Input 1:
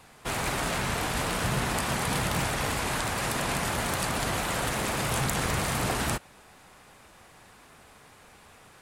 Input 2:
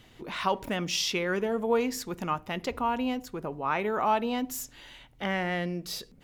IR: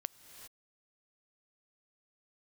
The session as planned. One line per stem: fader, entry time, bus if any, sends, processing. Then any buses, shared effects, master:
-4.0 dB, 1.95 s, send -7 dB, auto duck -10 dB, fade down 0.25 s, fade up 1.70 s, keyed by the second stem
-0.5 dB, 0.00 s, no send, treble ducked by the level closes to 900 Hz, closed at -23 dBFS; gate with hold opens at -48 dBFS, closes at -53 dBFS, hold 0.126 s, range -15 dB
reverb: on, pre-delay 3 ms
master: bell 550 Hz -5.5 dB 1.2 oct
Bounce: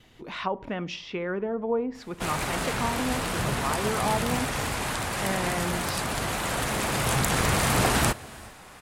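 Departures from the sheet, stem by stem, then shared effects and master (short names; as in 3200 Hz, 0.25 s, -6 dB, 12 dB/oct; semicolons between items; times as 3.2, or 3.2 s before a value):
stem 1 -4.0 dB -> +3.5 dB; master: missing bell 550 Hz -5.5 dB 1.2 oct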